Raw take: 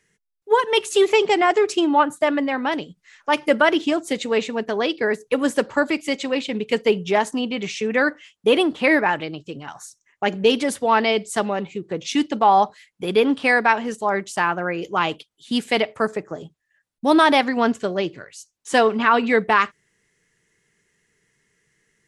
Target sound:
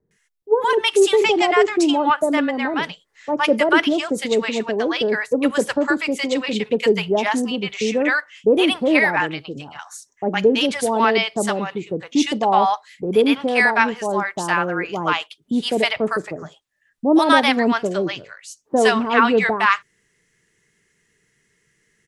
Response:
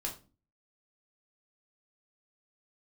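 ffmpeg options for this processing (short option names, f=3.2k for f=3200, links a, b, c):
-filter_complex "[0:a]acrossover=split=790[a][b];[b]adelay=110[c];[a][c]amix=inputs=2:normalize=0,volume=2.5dB"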